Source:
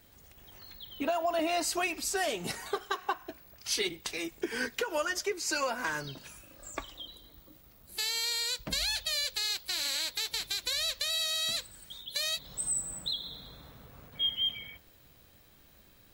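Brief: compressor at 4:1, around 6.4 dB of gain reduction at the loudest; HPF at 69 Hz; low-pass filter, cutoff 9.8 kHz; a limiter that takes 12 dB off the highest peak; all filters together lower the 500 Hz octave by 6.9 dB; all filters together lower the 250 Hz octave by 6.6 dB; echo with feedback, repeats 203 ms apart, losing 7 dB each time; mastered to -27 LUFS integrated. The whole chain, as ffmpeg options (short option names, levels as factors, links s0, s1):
-af "highpass=69,lowpass=9800,equalizer=f=250:t=o:g=-5,equalizer=f=500:t=o:g=-9,acompressor=threshold=0.0178:ratio=4,alimiter=level_in=2.82:limit=0.0631:level=0:latency=1,volume=0.355,aecho=1:1:203|406|609|812|1015:0.447|0.201|0.0905|0.0407|0.0183,volume=5.01"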